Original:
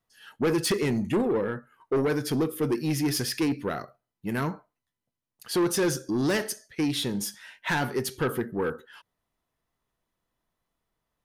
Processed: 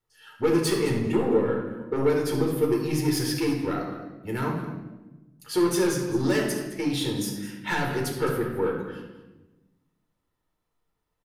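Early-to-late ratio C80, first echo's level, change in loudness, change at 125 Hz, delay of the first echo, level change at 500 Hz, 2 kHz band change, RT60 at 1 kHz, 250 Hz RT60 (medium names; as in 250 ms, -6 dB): 6.0 dB, -14.0 dB, +1.5 dB, +2.5 dB, 213 ms, +3.0 dB, 0.0 dB, 0.95 s, 1.6 s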